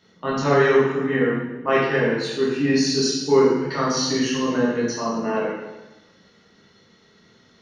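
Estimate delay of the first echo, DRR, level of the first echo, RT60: no echo, -6.5 dB, no echo, 1.1 s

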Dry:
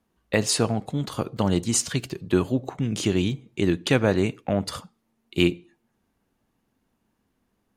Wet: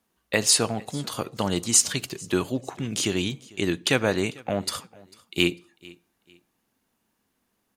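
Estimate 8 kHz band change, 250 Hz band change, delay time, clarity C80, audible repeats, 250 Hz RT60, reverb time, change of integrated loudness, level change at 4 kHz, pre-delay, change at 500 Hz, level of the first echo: +6.0 dB, -4.0 dB, 447 ms, no reverb, 2, no reverb, no reverb, 0.0 dB, +4.0 dB, no reverb, -2.5 dB, -23.5 dB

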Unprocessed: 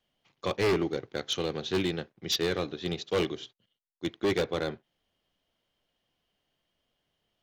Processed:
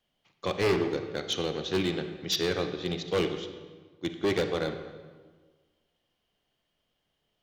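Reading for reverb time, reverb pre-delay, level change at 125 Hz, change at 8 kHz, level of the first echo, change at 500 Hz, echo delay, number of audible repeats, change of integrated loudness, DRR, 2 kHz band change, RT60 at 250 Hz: 1.5 s, 35 ms, +1.0 dB, +0.5 dB, no echo, +1.0 dB, no echo, no echo, +0.5 dB, 7.5 dB, +0.5 dB, 1.7 s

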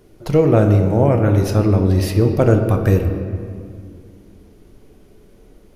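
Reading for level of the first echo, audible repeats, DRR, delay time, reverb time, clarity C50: no echo, no echo, 4.5 dB, no echo, 2.2 s, 6.5 dB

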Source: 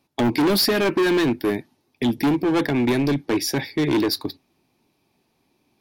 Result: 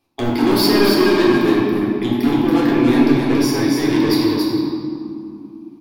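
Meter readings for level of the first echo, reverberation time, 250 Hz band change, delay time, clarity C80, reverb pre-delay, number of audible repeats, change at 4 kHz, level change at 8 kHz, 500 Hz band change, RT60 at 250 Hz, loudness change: -4.0 dB, 2.7 s, +7.0 dB, 279 ms, -1.5 dB, 3 ms, 1, +3.0 dB, +1.0 dB, +5.5 dB, 4.5 s, +5.5 dB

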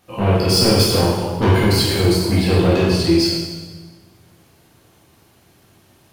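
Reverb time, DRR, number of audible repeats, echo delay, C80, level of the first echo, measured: 1.3 s, -7.0 dB, no echo, no echo, 2.5 dB, no echo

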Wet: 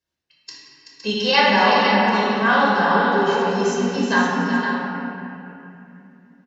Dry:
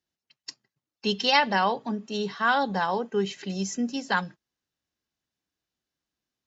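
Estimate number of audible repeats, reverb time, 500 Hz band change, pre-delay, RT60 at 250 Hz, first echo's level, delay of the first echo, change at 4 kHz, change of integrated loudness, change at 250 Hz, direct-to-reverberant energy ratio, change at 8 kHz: 2, 2.8 s, +9.5 dB, 9 ms, 3.8 s, -7.5 dB, 380 ms, +6.5 dB, +8.0 dB, +9.5 dB, -8.5 dB, no reading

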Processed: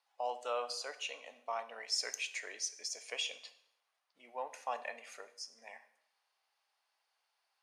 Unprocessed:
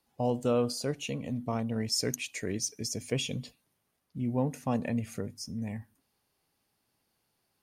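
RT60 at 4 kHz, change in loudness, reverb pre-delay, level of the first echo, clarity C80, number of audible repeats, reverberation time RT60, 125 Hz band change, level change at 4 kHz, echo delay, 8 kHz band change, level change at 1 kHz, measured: 0.70 s, -7.0 dB, 7 ms, no echo, 17.0 dB, no echo, 0.75 s, under -40 dB, -2.5 dB, no echo, -5.5 dB, -1.0 dB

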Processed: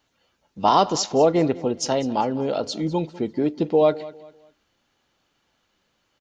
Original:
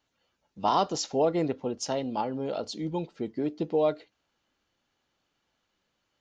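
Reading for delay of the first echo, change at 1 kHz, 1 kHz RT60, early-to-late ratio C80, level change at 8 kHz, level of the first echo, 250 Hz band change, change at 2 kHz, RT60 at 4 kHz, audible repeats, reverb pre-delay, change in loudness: 199 ms, +7.5 dB, no reverb, no reverb, +7.5 dB, -18.5 dB, +7.5 dB, +7.5 dB, no reverb, 2, no reverb, +7.5 dB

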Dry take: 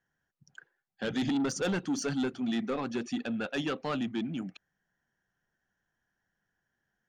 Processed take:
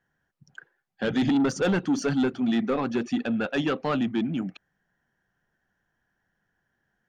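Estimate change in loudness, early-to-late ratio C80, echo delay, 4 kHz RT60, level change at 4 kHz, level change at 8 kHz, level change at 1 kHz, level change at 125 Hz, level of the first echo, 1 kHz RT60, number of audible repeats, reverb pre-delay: +6.5 dB, no reverb, no echo, no reverb, +3.0 dB, 0.0 dB, +6.5 dB, +7.0 dB, no echo, no reverb, no echo, no reverb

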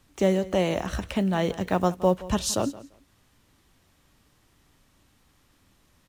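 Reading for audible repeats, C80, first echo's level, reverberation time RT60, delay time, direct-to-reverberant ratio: 2, no reverb, -18.0 dB, no reverb, 171 ms, no reverb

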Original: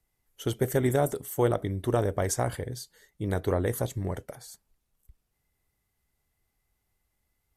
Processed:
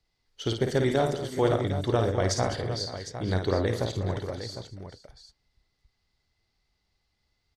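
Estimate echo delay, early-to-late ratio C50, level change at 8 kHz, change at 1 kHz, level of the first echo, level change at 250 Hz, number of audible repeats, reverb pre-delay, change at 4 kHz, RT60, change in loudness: 53 ms, no reverb, -2.0 dB, +2.0 dB, -6.0 dB, +1.5 dB, 5, no reverb, +9.0 dB, no reverb, +1.0 dB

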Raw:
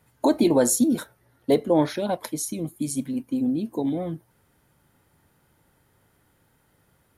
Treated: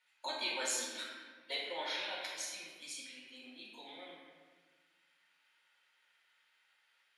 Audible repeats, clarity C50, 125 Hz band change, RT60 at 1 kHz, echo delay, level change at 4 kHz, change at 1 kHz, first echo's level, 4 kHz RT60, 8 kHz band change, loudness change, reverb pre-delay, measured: no echo, 0.0 dB, under -40 dB, 1.4 s, no echo, 0.0 dB, -13.5 dB, no echo, 1.0 s, -12.0 dB, -15.0 dB, 4 ms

